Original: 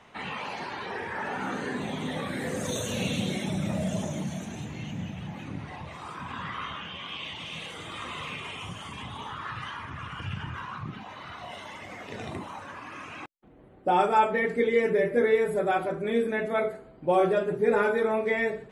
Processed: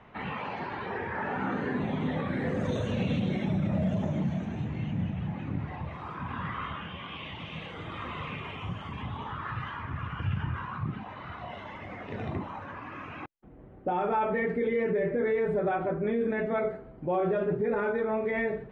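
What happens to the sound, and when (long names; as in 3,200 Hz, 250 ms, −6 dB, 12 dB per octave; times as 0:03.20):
0:15.71–0:16.21: high-frequency loss of the air 150 metres
0:17.91–0:18.32: downward compressor 3 to 1, threshold −27 dBFS
whole clip: low-pass filter 2,300 Hz 12 dB per octave; low-shelf EQ 180 Hz +8 dB; brickwall limiter −20.5 dBFS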